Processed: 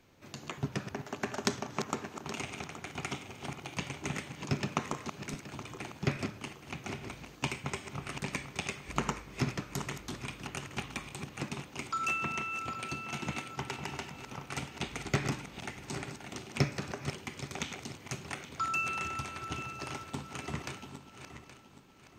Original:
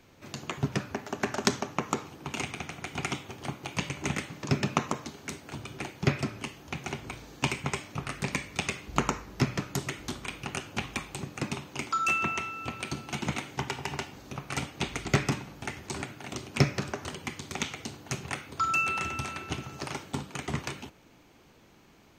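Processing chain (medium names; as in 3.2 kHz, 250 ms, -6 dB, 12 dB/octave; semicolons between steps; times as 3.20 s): backward echo that repeats 411 ms, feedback 58%, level -9 dB; trim -5.5 dB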